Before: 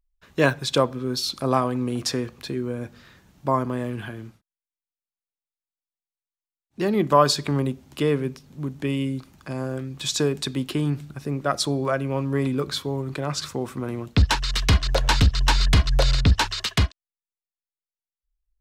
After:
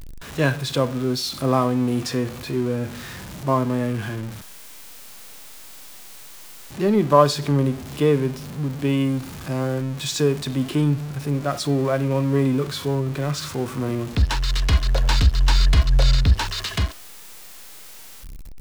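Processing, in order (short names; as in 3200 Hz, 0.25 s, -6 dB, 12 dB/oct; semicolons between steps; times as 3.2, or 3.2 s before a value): zero-crossing step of -31.5 dBFS; harmonic-percussive split harmonic +9 dB; gain -5.5 dB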